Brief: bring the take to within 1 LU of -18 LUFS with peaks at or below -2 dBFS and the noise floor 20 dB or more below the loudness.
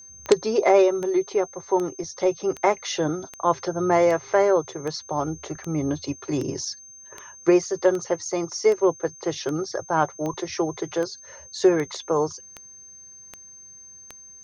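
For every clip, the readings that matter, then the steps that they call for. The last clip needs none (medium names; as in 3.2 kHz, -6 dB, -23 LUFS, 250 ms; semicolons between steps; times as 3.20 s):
clicks found 19; steady tone 6.3 kHz; tone level -43 dBFS; loudness -24.0 LUFS; peak level -4.0 dBFS; loudness target -18.0 LUFS
-> de-click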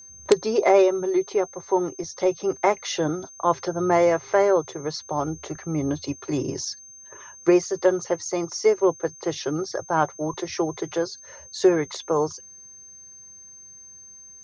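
clicks found 0; steady tone 6.3 kHz; tone level -43 dBFS
-> band-stop 6.3 kHz, Q 30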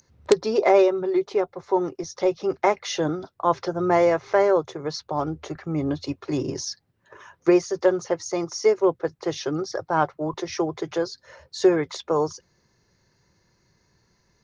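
steady tone not found; loudness -24.0 LUFS; peak level -4.0 dBFS; loudness target -18.0 LUFS
-> trim +6 dB; peak limiter -2 dBFS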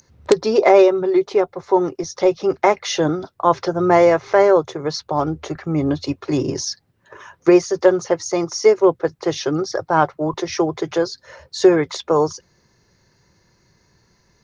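loudness -18.0 LUFS; peak level -2.0 dBFS; noise floor -61 dBFS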